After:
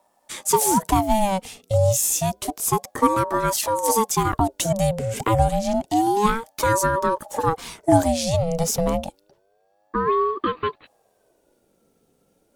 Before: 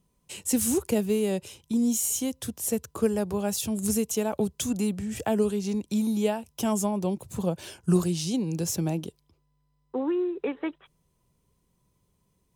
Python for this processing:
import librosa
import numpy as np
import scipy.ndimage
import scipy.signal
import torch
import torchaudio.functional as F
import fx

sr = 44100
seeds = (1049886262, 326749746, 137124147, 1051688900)

y = fx.ring_lfo(x, sr, carrier_hz=550.0, swing_pct=40, hz=0.29)
y = y * librosa.db_to_amplitude(9.0)